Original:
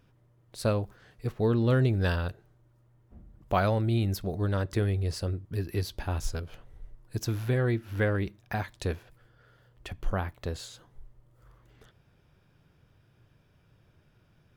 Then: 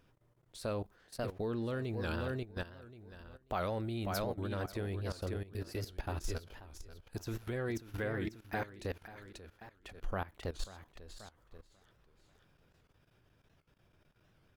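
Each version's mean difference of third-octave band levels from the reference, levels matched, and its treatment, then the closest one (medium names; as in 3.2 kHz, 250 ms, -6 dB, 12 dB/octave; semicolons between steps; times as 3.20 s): 6.5 dB: feedback delay 538 ms, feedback 29%, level -7 dB; level held to a coarse grid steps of 16 dB; peaking EQ 120 Hz -6.5 dB 1.4 oct; warped record 78 rpm, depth 160 cents; trim -1 dB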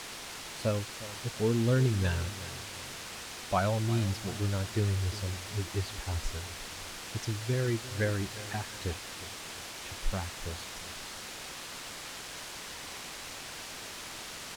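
13.5 dB: expander on every frequency bin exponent 1.5; word length cut 6-bit, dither triangular; distance through air 61 m; feedback delay 356 ms, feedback 39%, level -16 dB; trim -1 dB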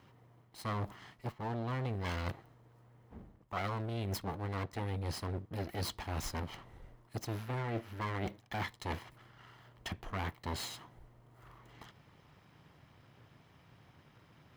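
8.5 dB: comb filter that takes the minimum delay 0.98 ms; high-pass 230 Hz 6 dB/octave; peaking EQ 11 kHz -7 dB 2.1 oct; reverse; compression 8:1, threshold -42 dBFS, peak gain reduction 17 dB; reverse; trim +8 dB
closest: first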